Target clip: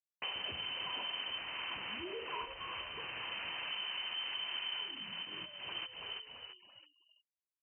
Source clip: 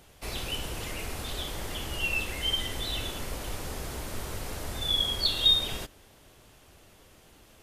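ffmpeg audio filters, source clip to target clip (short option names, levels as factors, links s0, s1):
-filter_complex "[0:a]asettb=1/sr,asplit=3[s0][s1][s2];[s0]atrim=end=1.364[s3];[s1]atrim=start=1.36:end=3.7,asetpts=PTS-STARTPTS,afade=t=in:d=0.004:c=qsin,afade=t=out:st=2.336:d=0.004:c=qsin,lowshelf=f=180:g=-9[s4];[s2]atrim=start=3.696[s5];[s3][s4]acrossfade=d=0.004:c1=hsin:c2=qsin[s6];[s6][s5]acrossfade=d=0.004:c1=qsin:c2=hsin,acrusher=bits=6:mix=0:aa=0.000001,asoftclip=type=tanh:threshold=0.0473,asplit=5[s7][s8][s9][s10][s11];[s8]adelay=335,afreqshift=-72,volume=0.251[s12];[s9]adelay=670,afreqshift=-144,volume=0.0902[s13];[s10]adelay=1005,afreqshift=-216,volume=0.0327[s14];[s11]adelay=1340,afreqshift=-288,volume=0.0117[s15];[s7][s12][s13][s14][s15]amix=inputs=5:normalize=0,acompressor=threshold=0.00708:ratio=12,lowpass=f=2600:t=q:w=0.5098,lowpass=f=2600:t=q:w=0.6013,lowpass=f=2600:t=q:w=0.9,lowpass=f=2600:t=q:w=2.563,afreqshift=-3100,highpass=58,equalizer=f=1000:t=o:w=0.21:g=6.5,afftfilt=real='re*gte(hypot(re,im),0.000447)':imag='im*gte(hypot(re,im),0.000447)':win_size=1024:overlap=0.75,volume=2.11"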